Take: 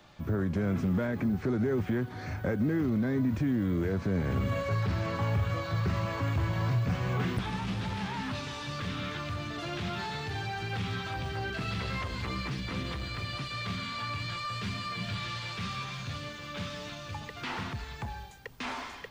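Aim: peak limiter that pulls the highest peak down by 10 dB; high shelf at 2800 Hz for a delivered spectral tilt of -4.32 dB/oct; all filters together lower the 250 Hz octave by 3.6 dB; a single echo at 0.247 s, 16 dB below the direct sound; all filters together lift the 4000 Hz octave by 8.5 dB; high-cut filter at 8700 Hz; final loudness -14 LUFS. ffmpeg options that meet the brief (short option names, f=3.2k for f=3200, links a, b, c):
-af "lowpass=8.7k,equalizer=f=250:t=o:g=-5,highshelf=f=2.8k:g=8.5,equalizer=f=4k:t=o:g=4,alimiter=level_in=5dB:limit=-24dB:level=0:latency=1,volume=-5dB,aecho=1:1:247:0.158,volume=22dB"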